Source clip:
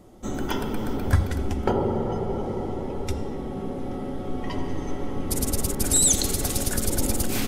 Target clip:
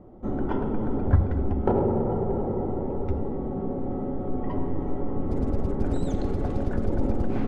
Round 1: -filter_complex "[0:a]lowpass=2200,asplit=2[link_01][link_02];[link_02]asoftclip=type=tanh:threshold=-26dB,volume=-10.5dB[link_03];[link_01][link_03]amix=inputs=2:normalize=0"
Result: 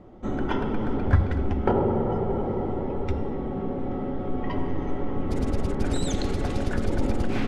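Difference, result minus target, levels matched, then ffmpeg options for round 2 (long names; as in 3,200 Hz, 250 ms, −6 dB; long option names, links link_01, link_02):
2,000 Hz band +8.5 dB
-filter_complex "[0:a]lowpass=960,asplit=2[link_01][link_02];[link_02]asoftclip=type=tanh:threshold=-26dB,volume=-10.5dB[link_03];[link_01][link_03]amix=inputs=2:normalize=0"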